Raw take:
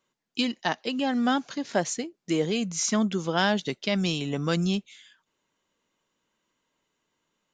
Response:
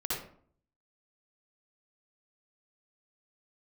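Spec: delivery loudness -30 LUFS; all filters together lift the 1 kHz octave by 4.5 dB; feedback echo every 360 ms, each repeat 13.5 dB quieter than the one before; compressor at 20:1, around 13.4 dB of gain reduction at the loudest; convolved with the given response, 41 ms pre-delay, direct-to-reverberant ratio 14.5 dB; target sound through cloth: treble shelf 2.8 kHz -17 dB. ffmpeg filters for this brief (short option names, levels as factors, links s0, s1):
-filter_complex "[0:a]equalizer=f=1000:t=o:g=8.5,acompressor=threshold=0.0398:ratio=20,aecho=1:1:360|720:0.211|0.0444,asplit=2[s0][s1];[1:a]atrim=start_sample=2205,adelay=41[s2];[s1][s2]afir=irnorm=-1:irlink=0,volume=0.106[s3];[s0][s3]amix=inputs=2:normalize=0,highshelf=f=2800:g=-17,volume=1.78"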